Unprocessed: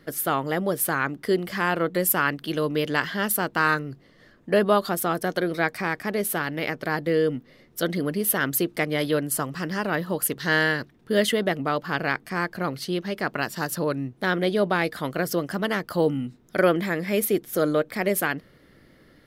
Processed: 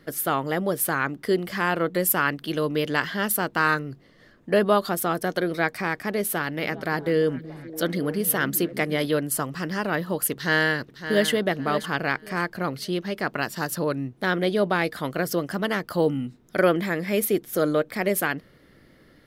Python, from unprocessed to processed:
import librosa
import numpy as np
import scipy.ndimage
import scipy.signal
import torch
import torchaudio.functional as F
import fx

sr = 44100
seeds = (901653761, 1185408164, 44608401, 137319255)

y = fx.echo_stepped(x, sr, ms=288, hz=160.0, octaves=0.7, feedback_pct=70, wet_db=-9, at=(6.59, 9.05), fade=0.02)
y = fx.echo_throw(y, sr, start_s=10.32, length_s=0.97, ms=560, feedback_pct=25, wet_db=-10.5)